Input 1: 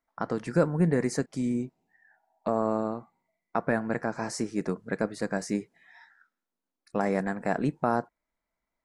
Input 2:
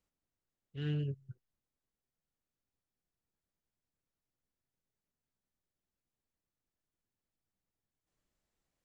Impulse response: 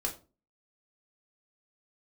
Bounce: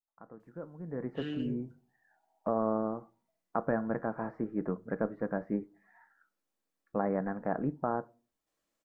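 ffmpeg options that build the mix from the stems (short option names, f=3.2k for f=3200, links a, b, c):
-filter_complex "[0:a]dynaudnorm=f=290:g=9:m=6dB,lowpass=f=1.5k:w=0.5412,lowpass=f=1.5k:w=1.3066,volume=-10.5dB,afade=t=in:st=0.84:d=0.24:silence=0.266073,asplit=2[a][b];[b]volume=-15.5dB[c];[1:a]highpass=230,acrossover=split=460[d][e];[e]acompressor=threshold=-48dB:ratio=2[f];[d][f]amix=inputs=2:normalize=0,adelay=400,volume=-1dB,asplit=2[g][h];[h]volume=-3.5dB[i];[2:a]atrim=start_sample=2205[j];[c][i]amix=inputs=2:normalize=0[k];[k][j]afir=irnorm=-1:irlink=0[l];[a][g][l]amix=inputs=3:normalize=0"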